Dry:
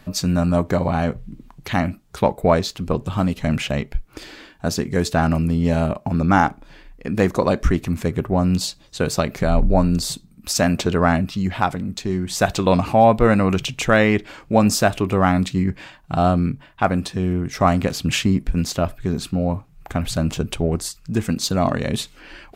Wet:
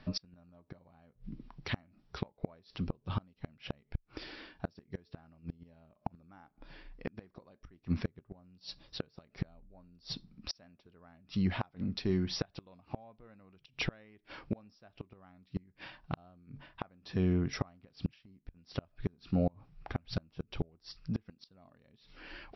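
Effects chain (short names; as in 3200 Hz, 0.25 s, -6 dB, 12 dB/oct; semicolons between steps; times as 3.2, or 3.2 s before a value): flipped gate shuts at -12 dBFS, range -34 dB; brick-wall FIR low-pass 5800 Hz; gain -8 dB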